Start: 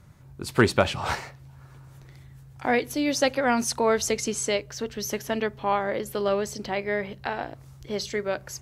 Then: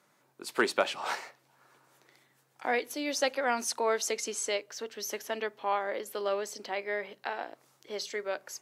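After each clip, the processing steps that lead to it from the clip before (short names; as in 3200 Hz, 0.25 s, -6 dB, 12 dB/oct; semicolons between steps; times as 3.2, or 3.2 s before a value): Bessel high-pass 400 Hz, order 4; gain -4.5 dB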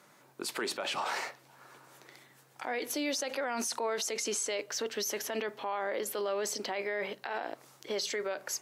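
in parallel at +2.5 dB: negative-ratio compressor -39 dBFS, ratio -1; on the sum: limiter -21 dBFS, peak gain reduction 10.5 dB; gain -3.5 dB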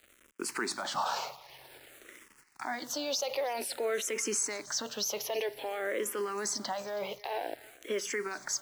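bit-crush 9-bit; thinning echo 0.322 s, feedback 51%, high-pass 580 Hz, level -19 dB; endless phaser -0.52 Hz; gain +3.5 dB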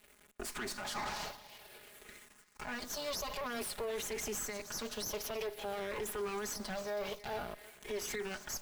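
minimum comb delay 4.8 ms; limiter -30.5 dBFS, peak gain reduction 8.5 dB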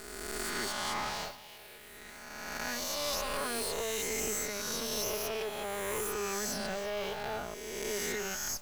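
spectral swells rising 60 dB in 2.04 s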